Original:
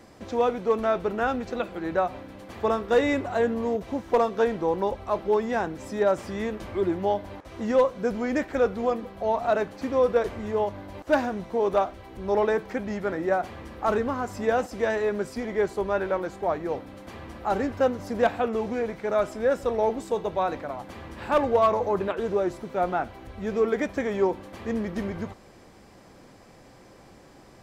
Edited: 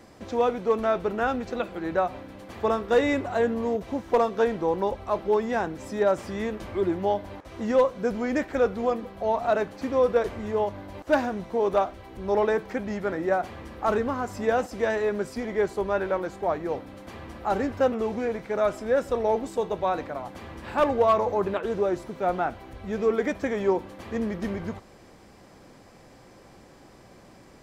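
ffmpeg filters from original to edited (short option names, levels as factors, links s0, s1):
-filter_complex "[0:a]asplit=2[s0][s1];[s0]atrim=end=17.922[s2];[s1]atrim=start=18.458[s3];[s2][s3]acrossfade=d=0.004:c1=hsin:c2=hsin"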